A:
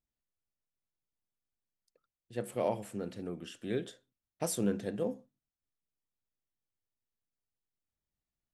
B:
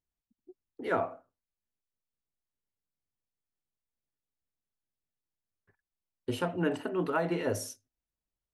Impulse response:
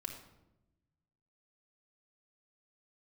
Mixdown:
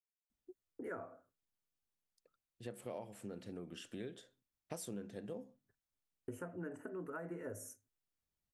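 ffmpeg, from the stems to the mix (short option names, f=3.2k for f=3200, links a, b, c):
-filter_complex "[0:a]adelay=300,volume=-1dB[a];[1:a]agate=range=-33dB:threshold=-60dB:ratio=3:detection=peak,firequalizer=gain_entry='entry(540,0);entry(810,-7);entry(1500,2);entry(3800,-28);entry(6700,2)':delay=0.05:min_phase=1,volume=-2.5dB[b];[a][b]amix=inputs=2:normalize=0,acompressor=threshold=-44dB:ratio=4"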